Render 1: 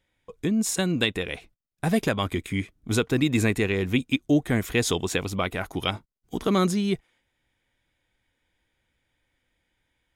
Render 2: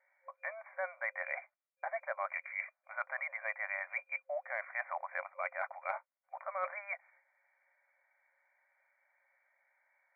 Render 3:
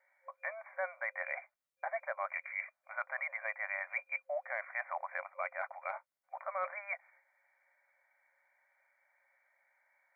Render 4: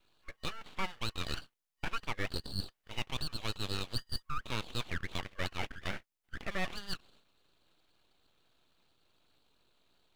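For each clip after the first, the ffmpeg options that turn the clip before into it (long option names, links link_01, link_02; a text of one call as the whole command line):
ffmpeg -i in.wav -af "afftfilt=real='re*between(b*sr/4096,530,2400)':imag='im*between(b*sr/4096,530,2400)':win_size=4096:overlap=0.75,areverse,acompressor=threshold=-39dB:ratio=6,areverse,volume=4dB" out.wav
ffmpeg -i in.wav -af "alimiter=level_in=2dB:limit=-24dB:level=0:latency=1:release=236,volume=-2dB,volume=1dB" out.wav
ffmpeg -i in.wav -af "afreqshift=14,aeval=exprs='abs(val(0))':channel_layout=same,volume=4dB" out.wav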